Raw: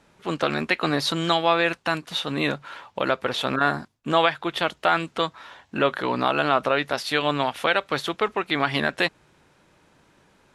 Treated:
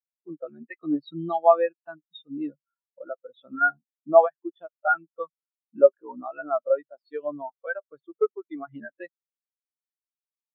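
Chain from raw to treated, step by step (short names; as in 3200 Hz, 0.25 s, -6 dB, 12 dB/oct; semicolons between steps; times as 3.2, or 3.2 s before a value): in parallel at -2 dB: compressor, threshold -30 dBFS, peak gain reduction 15 dB; on the sum: spectral expander 4:1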